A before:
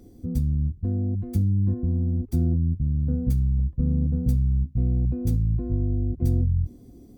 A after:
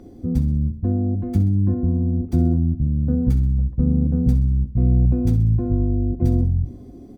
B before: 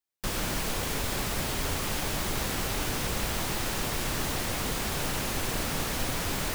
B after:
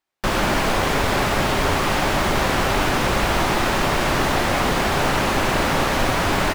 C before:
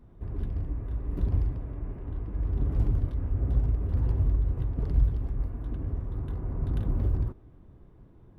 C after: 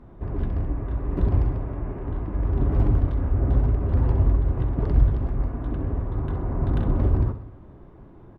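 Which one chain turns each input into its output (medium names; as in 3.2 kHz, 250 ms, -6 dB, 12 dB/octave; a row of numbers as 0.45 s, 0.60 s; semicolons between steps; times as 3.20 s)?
low-pass 1.1 kHz 6 dB/octave; bass shelf 340 Hz -11 dB; band-stop 470 Hz, Q 12; feedback delay 64 ms, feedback 55%, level -12.5 dB; peak normalisation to -6 dBFS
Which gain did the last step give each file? +14.5 dB, +19.0 dB, +16.0 dB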